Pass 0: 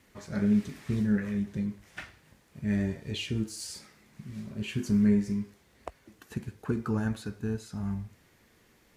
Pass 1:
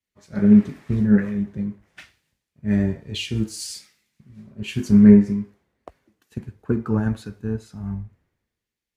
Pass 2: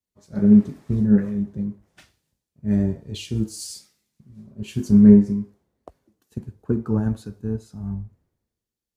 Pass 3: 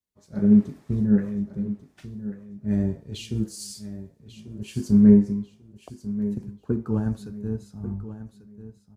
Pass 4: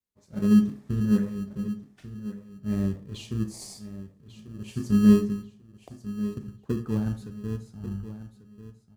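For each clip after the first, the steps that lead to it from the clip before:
high shelf 2300 Hz -9 dB; three-band expander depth 100%; gain +6.5 dB
bell 2100 Hz -11 dB 1.6 oct
feedback echo 1.142 s, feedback 27%, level -13.5 dB; gain -3 dB
in parallel at -11 dB: sample-and-hold 30×; on the sum: reverb RT60 0.35 s, pre-delay 27 ms, DRR 12 dB; gain -5 dB

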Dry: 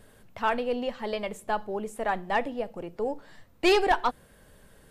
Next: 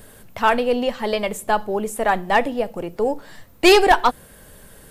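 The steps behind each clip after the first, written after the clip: high shelf 8800 Hz +11.5 dB; gain +9 dB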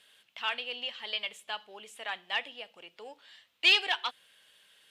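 band-pass 3100 Hz, Q 3.3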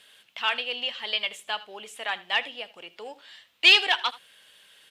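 echo 79 ms -19 dB; gain +6.5 dB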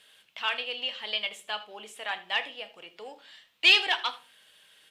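shoebox room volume 230 m³, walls furnished, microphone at 0.55 m; gain -3.5 dB

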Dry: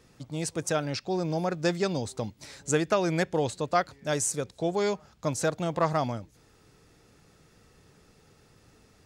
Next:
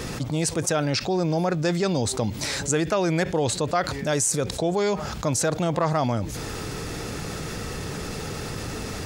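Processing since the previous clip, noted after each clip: fast leveller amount 70%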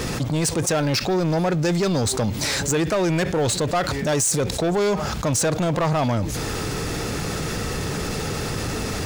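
sample leveller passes 3; gain -5.5 dB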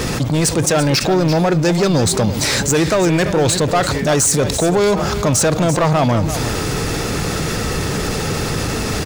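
echo 0.339 s -11 dB; gain +6 dB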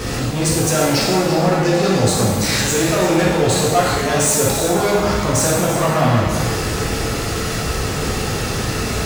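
shimmer reverb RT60 1.1 s, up +7 st, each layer -8 dB, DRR -5 dB; gain -7 dB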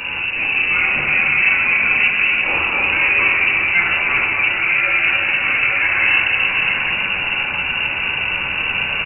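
reverse delay 0.531 s, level -5 dB; echo 0.28 s -8 dB; inverted band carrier 2800 Hz; gain -1.5 dB

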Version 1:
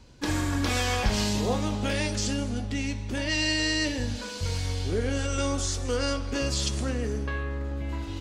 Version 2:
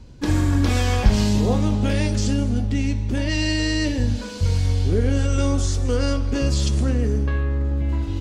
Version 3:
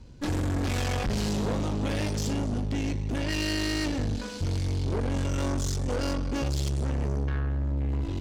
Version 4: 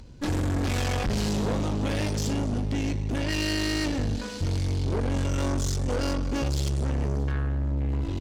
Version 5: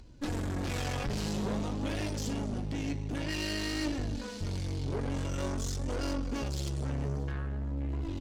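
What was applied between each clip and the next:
low shelf 390 Hz +11 dB
tube stage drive 25 dB, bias 0.75
upward compressor, threshold -49 dBFS; echo 0.628 s -24 dB; gain +1.5 dB
flange 0.5 Hz, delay 2.7 ms, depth 4.7 ms, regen +54%; gain -2 dB

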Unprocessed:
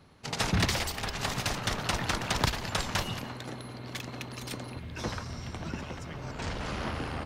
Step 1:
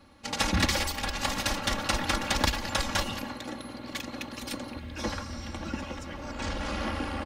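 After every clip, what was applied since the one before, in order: comb 3.6 ms, depth 89%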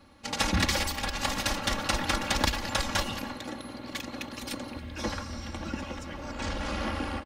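outdoor echo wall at 48 m, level -20 dB; ending taper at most 250 dB/s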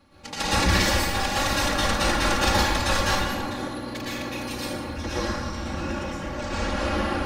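reverb RT60 1.2 s, pre-delay 0.103 s, DRR -9.5 dB; gain -3 dB

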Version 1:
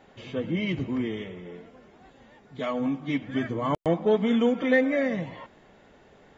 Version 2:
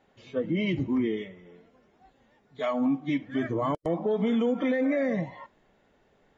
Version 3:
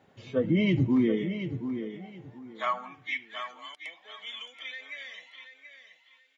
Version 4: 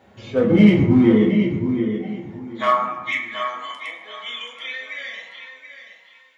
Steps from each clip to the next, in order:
spectral noise reduction 10 dB; dynamic EQ 420 Hz, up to +5 dB, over -36 dBFS, Q 0.73; limiter -19 dBFS, peak gain reduction 11.5 dB
vocal rider within 4 dB 2 s; high-pass sweep 100 Hz -> 2900 Hz, 0.76–3.42; feedback echo 0.729 s, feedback 23%, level -9.5 dB
in parallel at -4 dB: overloaded stage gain 26.5 dB; on the sum: reverb RT60 1.1 s, pre-delay 7 ms, DRR -1.5 dB; gain +2.5 dB

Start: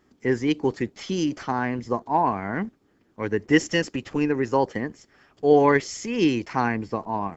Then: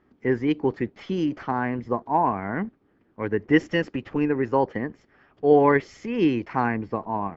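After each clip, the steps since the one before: LPF 2400 Hz 12 dB/oct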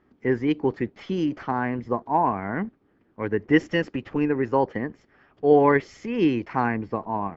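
nothing audible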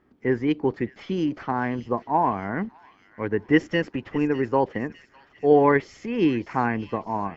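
thin delay 0.603 s, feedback 50%, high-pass 2900 Hz, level -10 dB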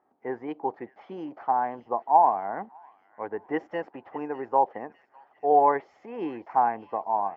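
band-pass 780 Hz, Q 4; gain +6.5 dB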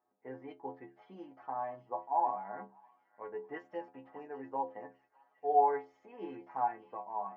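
metallic resonator 63 Hz, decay 0.4 s, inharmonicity 0.008; gain -2 dB

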